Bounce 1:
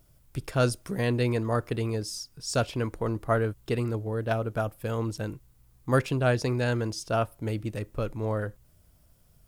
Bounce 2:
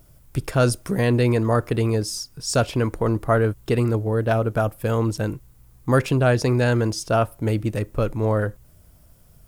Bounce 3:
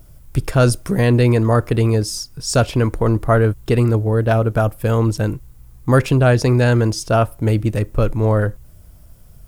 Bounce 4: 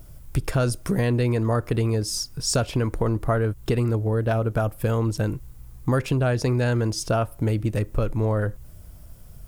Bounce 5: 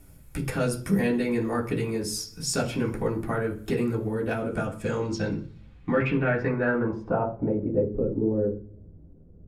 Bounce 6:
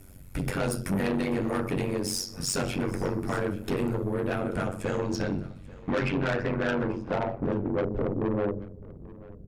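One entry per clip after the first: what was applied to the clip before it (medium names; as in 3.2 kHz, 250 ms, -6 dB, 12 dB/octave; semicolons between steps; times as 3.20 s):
peaking EQ 3.8 kHz -3 dB 1.6 oct; in parallel at +2 dB: peak limiter -20 dBFS, peak gain reduction 9.5 dB; on the sum: trim +1.5 dB
bass shelf 87 Hz +8 dB; trim +3.5 dB
compression 3:1, threshold -21 dBFS, peak gain reduction 10 dB
reverberation RT60 0.50 s, pre-delay 3 ms, DRR -4.5 dB; low-pass sweep 12 kHz -> 390 Hz, 4.28–8.09 s; endings held to a fixed fall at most 260 dB/s; trim -9 dB
AM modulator 93 Hz, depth 90%; saturation -28.5 dBFS, distortion -9 dB; delay 837 ms -20.5 dB; trim +6.5 dB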